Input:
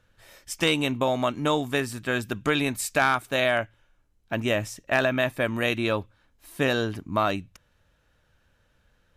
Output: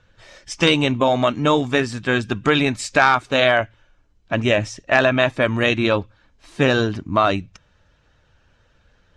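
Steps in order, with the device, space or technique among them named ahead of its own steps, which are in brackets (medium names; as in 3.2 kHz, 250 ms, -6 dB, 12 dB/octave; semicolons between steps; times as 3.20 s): clip after many re-uploads (low-pass 6.8 kHz 24 dB/octave; coarse spectral quantiser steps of 15 dB); trim +7.5 dB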